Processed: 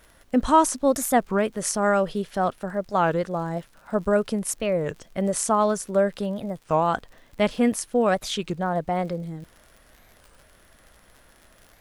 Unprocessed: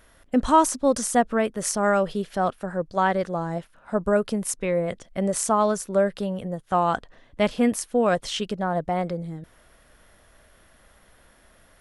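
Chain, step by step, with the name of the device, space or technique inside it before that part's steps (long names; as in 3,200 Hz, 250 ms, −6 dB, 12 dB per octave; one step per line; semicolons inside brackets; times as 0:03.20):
warped LP (wow of a warped record 33 1/3 rpm, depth 250 cents; surface crackle 69 per second −39 dBFS; pink noise bed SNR 41 dB)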